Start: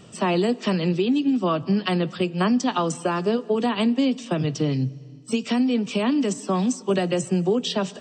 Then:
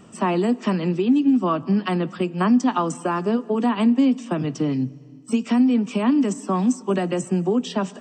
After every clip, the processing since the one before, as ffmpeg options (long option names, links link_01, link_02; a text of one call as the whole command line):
ffmpeg -i in.wav -af "equalizer=frequency=125:width_type=o:width=1:gain=-6,equalizer=frequency=250:width_type=o:width=1:gain=6,equalizer=frequency=500:width_type=o:width=1:gain=-4,equalizer=frequency=1000:width_type=o:width=1:gain=4,equalizer=frequency=4000:width_type=o:width=1:gain=-9" out.wav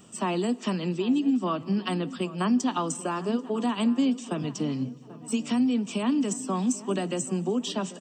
ffmpeg -i in.wav -filter_complex "[0:a]aexciter=amount=2:drive=6.9:freq=2900,asplit=2[link_01][link_02];[link_02]adelay=788,lowpass=frequency=1900:poles=1,volume=-16.5dB,asplit=2[link_03][link_04];[link_04]adelay=788,lowpass=frequency=1900:poles=1,volume=0.53,asplit=2[link_05][link_06];[link_06]adelay=788,lowpass=frequency=1900:poles=1,volume=0.53,asplit=2[link_07][link_08];[link_08]adelay=788,lowpass=frequency=1900:poles=1,volume=0.53,asplit=2[link_09][link_10];[link_10]adelay=788,lowpass=frequency=1900:poles=1,volume=0.53[link_11];[link_01][link_03][link_05][link_07][link_09][link_11]amix=inputs=6:normalize=0,volume=-6.5dB" out.wav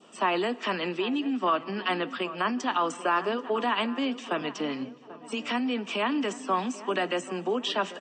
ffmpeg -i in.wav -af "adynamicequalizer=threshold=0.00447:dfrequency=1800:dqfactor=1.1:tfrequency=1800:tqfactor=1.1:attack=5:release=100:ratio=0.375:range=3.5:mode=boostabove:tftype=bell,alimiter=limit=-19.5dB:level=0:latency=1:release=24,highpass=430,lowpass=3500,volume=5dB" out.wav